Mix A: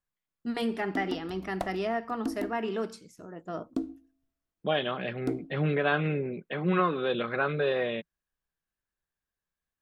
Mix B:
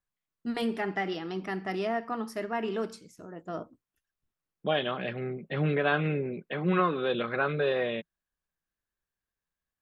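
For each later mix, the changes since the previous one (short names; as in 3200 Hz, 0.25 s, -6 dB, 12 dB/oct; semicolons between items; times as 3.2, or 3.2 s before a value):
background: muted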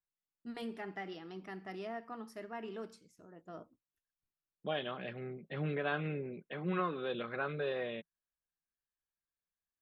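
first voice -12.0 dB; second voice -9.0 dB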